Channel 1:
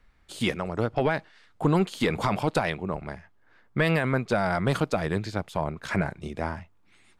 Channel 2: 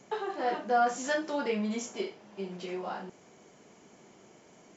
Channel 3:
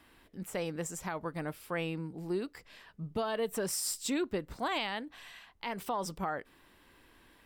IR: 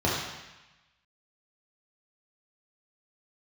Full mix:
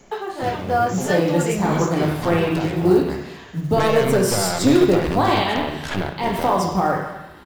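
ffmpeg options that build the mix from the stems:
-filter_complex "[0:a]acompressor=threshold=-28dB:ratio=2,aeval=exprs='0.178*(cos(1*acos(clip(val(0)/0.178,-1,1)))-cos(1*PI/2))+0.0501*(cos(4*acos(clip(val(0)/0.178,-1,1)))-cos(4*PI/2))+0.0708*(cos(6*acos(clip(val(0)/0.178,-1,1)))-cos(6*PI/2))':channel_layout=same,volume=-5dB,asplit=2[link_01][link_02];[link_02]volume=-20dB[link_03];[1:a]volume=-0.5dB,asplit=2[link_04][link_05];[2:a]adelay=550,volume=-1dB,asplit=2[link_06][link_07];[link_07]volume=-6.5dB[link_08];[link_05]apad=whole_len=317480[link_09];[link_01][link_09]sidechaincompress=threshold=-45dB:ratio=8:attack=16:release=313[link_10];[3:a]atrim=start_sample=2205[link_11];[link_03][link_08]amix=inputs=2:normalize=0[link_12];[link_12][link_11]afir=irnorm=-1:irlink=0[link_13];[link_10][link_04][link_06][link_13]amix=inputs=4:normalize=0,acontrast=71,acrusher=bits=8:mode=log:mix=0:aa=0.000001"

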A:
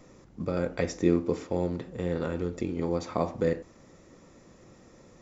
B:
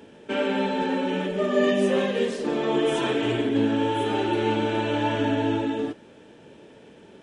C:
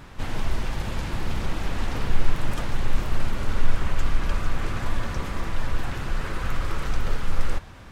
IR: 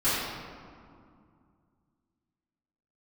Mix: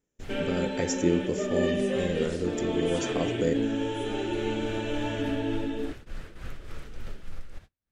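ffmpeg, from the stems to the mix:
-filter_complex "[0:a]aexciter=amount=4.1:drive=6.1:freq=5900,volume=-0.5dB,asplit=2[link_01][link_02];[1:a]volume=-5dB[link_03];[2:a]tremolo=f=3.4:d=0.67,acompressor=threshold=-19dB:ratio=6,volume=-9.5dB[link_04];[link_02]apad=whole_len=348982[link_05];[link_04][link_05]sidechaincompress=threshold=-38dB:ratio=8:attack=16:release=1210[link_06];[link_01][link_03][link_06]amix=inputs=3:normalize=0,agate=range=-32dB:threshold=-42dB:ratio=16:detection=peak,equalizer=frequency=1000:width_type=o:width=0.72:gain=-8"

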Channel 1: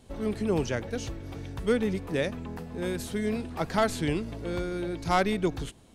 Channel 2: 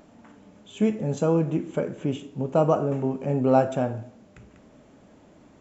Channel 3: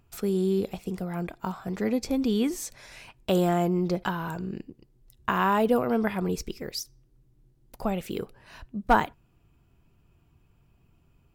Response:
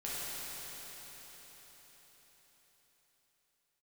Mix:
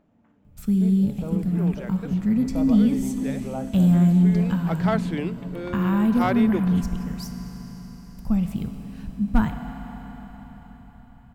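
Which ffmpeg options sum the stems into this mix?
-filter_complex "[0:a]highpass=270,adelay=1100,volume=0dB[link_01];[1:a]volume=-14dB,asplit=2[link_02][link_03];[2:a]firequalizer=gain_entry='entry(250,0);entry(350,-18);entry(1100,-12);entry(7900,4)':delay=0.05:min_phase=1,adelay=450,volume=2dB,asplit=2[link_04][link_05];[link_05]volume=-7dB[link_06];[link_03]apad=whole_len=310857[link_07];[link_01][link_07]sidechaincompress=threshold=-40dB:ratio=8:attack=6.1:release=885[link_08];[3:a]atrim=start_sample=2205[link_09];[link_06][link_09]afir=irnorm=-1:irlink=0[link_10];[link_08][link_02][link_04][link_10]amix=inputs=4:normalize=0,bass=frequency=250:gain=7,treble=frequency=4000:gain=-12"

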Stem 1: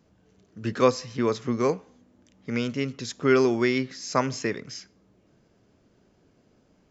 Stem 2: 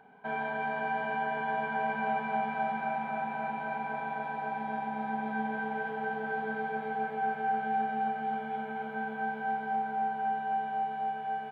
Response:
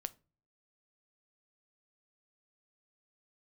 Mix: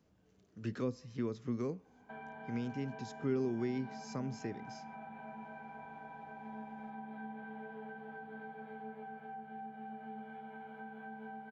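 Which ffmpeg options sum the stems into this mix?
-filter_complex "[0:a]volume=-8.5dB[link_01];[1:a]flanger=delay=9.1:depth=1.5:regen=73:speed=0.85:shape=triangular,adelay=1850,volume=-4.5dB[link_02];[link_01][link_02]amix=inputs=2:normalize=0,acrossover=split=350[link_03][link_04];[link_04]acompressor=threshold=-48dB:ratio=5[link_05];[link_03][link_05]amix=inputs=2:normalize=0"

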